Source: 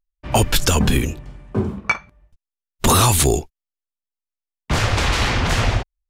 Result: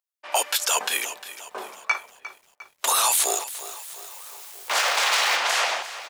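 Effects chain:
0:03.13–0:05.37: converter with a step at zero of −28 dBFS
high-pass filter 610 Hz 24 dB per octave
high-shelf EQ 4,500 Hz +4.5 dB
brickwall limiter −11 dBFS, peak gain reduction 9 dB
slap from a distant wall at 220 metres, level −24 dB
feedback echo at a low word length 353 ms, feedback 55%, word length 8 bits, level −14.5 dB

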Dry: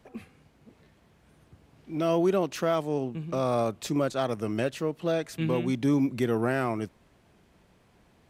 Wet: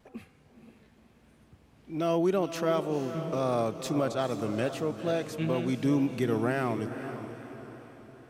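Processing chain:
feedback delay with all-pass diffusion 479 ms, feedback 48%, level −9.5 dB
tape wow and flutter 27 cents
level −2 dB

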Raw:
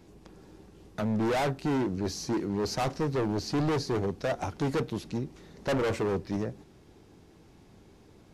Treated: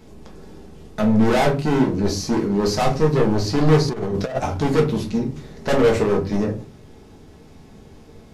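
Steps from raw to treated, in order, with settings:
rectangular room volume 150 cubic metres, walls furnished, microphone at 1.5 metres
0:03.88–0:04.39: compressor whose output falls as the input rises −29 dBFS, ratio −0.5
level +6.5 dB

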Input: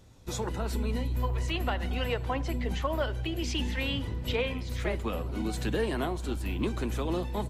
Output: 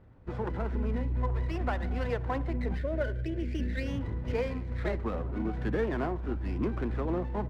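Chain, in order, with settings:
Chebyshev low-pass filter 1,900 Hz, order 3
gain on a spectral selection 0:02.77–0:03.87, 680–1,400 Hz −27 dB
windowed peak hold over 5 samples

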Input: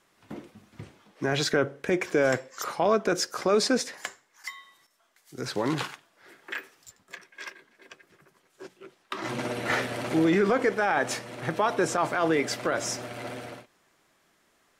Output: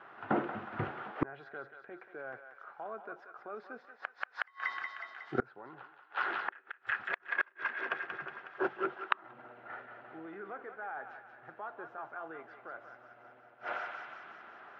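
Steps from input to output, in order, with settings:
loudspeaker in its box 160–2,400 Hz, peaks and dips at 180 Hz −10 dB, 280 Hz −7 dB, 510 Hz −3 dB, 770 Hz +7 dB, 1,400 Hz +9 dB, 2,200 Hz −7 dB
feedback echo with a high-pass in the loop 183 ms, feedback 65%, high-pass 1,000 Hz, level −6 dB
gate with flip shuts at −29 dBFS, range −34 dB
level +12.5 dB

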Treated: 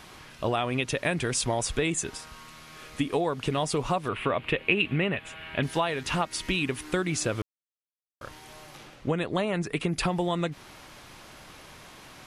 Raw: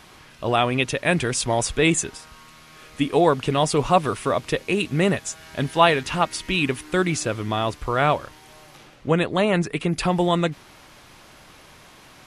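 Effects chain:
downward compressor 12 to 1, threshold −23 dBFS, peak gain reduction 13.5 dB
0:04.08–0:05.63: high shelf with overshoot 4,000 Hz −13.5 dB, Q 3
0:07.42–0:08.21: silence

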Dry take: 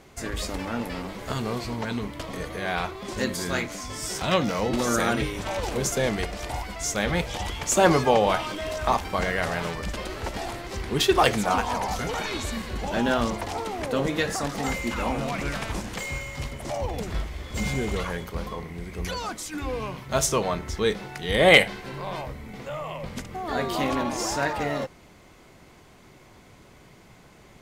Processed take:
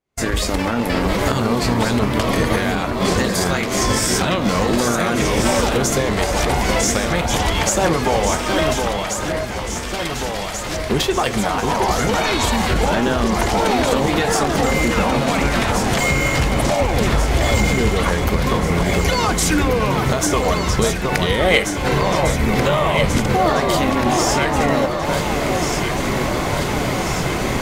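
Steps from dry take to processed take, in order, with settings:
camcorder AGC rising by 74 dB per second
0:08.73–0:10.90: guitar amp tone stack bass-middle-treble 10-0-10
downward expander −21 dBFS
delay that swaps between a low-pass and a high-pass 718 ms, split 1,600 Hz, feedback 80%, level −4 dB
level −1 dB

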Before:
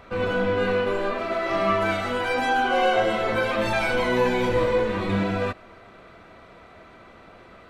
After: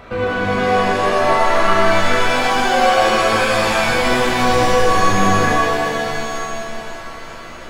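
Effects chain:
in parallel at +2.5 dB: downward compressor, threshold −33 dBFS, peak gain reduction 15.5 dB
on the sum: reverb with rising layers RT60 2.8 s, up +7 semitones, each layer −2 dB, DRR 0 dB

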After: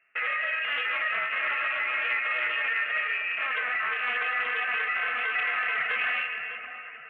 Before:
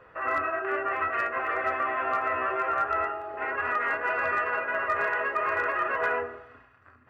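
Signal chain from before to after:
high-pass filter 420 Hz 12 dB per octave
noise gate with hold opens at −44 dBFS
in parallel at 0 dB: downward compressor, threshold −41 dBFS, peak gain reduction 16.5 dB
on the sum: brickwall limiter −22.5 dBFS, peak gain reduction 7.5 dB
on a send: echo with a time of its own for lows and highs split 1,700 Hz, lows 309 ms, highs 600 ms, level −9 dB
on the sum: voice inversion scrambler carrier 3,200 Hz
highs frequency-modulated by the lows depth 0.13 ms
level +2 dB

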